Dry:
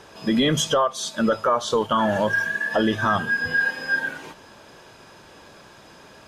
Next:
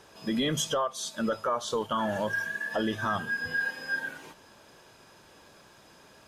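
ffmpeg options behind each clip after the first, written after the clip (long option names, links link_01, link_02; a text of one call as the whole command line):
ffmpeg -i in.wav -af "highshelf=frequency=8200:gain=8.5,volume=-8.5dB" out.wav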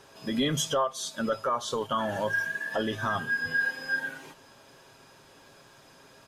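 ffmpeg -i in.wav -af "aecho=1:1:7.4:0.4" out.wav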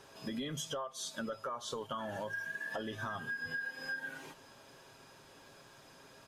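ffmpeg -i in.wav -af "acompressor=threshold=-34dB:ratio=6,volume=-3dB" out.wav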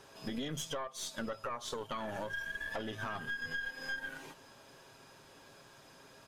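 ffmpeg -i in.wav -af "aeval=exprs='(tanh(39.8*val(0)+0.7)-tanh(0.7))/39.8':channel_layout=same,volume=4dB" out.wav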